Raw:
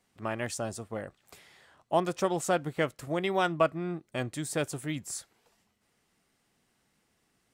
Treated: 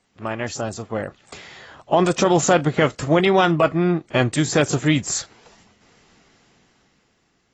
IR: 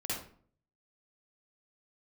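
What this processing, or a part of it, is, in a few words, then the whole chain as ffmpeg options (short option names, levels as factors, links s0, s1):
low-bitrate web radio: -af "dynaudnorm=f=210:g=11:m=3.76,alimiter=limit=0.224:level=0:latency=1:release=22,volume=2" -ar 24000 -c:a aac -b:a 24k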